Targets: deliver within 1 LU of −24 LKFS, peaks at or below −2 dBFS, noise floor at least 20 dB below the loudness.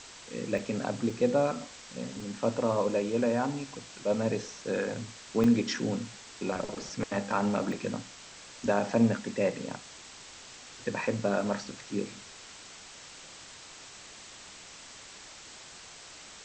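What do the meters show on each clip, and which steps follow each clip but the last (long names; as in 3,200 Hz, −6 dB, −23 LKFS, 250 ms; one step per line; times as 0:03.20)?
number of dropouts 5; longest dropout 2.5 ms; background noise floor −49 dBFS; target noise floor −51 dBFS; integrated loudness −31.0 LKFS; sample peak −12.5 dBFS; target loudness −24.0 LKFS
→ repair the gap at 0:00.58/0:01.10/0:02.20/0:05.44/0:07.72, 2.5 ms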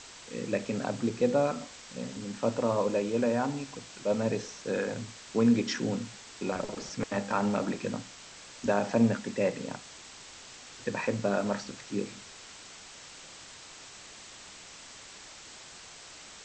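number of dropouts 0; background noise floor −49 dBFS; target noise floor −51 dBFS
→ broadband denoise 6 dB, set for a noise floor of −49 dBFS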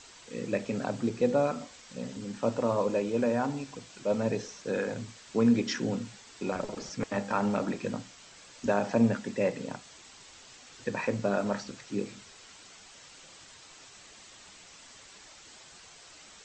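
background noise floor −53 dBFS; integrated loudness −31.0 LKFS; sample peak −13.0 dBFS; target loudness −24.0 LKFS
→ level +7 dB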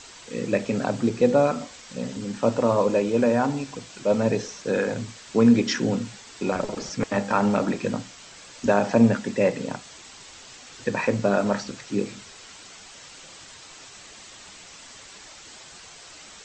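integrated loudness −24.0 LKFS; sample peak −6.0 dBFS; background noise floor −46 dBFS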